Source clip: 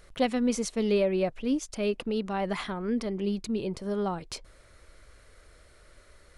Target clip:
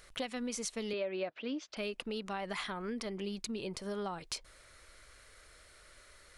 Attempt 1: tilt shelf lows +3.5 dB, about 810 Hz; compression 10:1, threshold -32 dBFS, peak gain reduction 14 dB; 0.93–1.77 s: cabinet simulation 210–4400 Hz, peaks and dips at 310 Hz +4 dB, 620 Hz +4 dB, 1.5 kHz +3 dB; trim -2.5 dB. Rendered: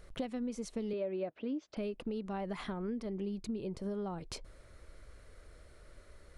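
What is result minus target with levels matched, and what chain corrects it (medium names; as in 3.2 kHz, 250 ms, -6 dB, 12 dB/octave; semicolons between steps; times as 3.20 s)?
1 kHz band -3.0 dB
tilt shelf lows -5.5 dB, about 810 Hz; compression 10:1, threshold -32 dBFS, peak gain reduction 11 dB; 0.93–1.77 s: cabinet simulation 210–4400 Hz, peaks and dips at 310 Hz +4 dB, 620 Hz +4 dB, 1.5 kHz +3 dB; trim -2.5 dB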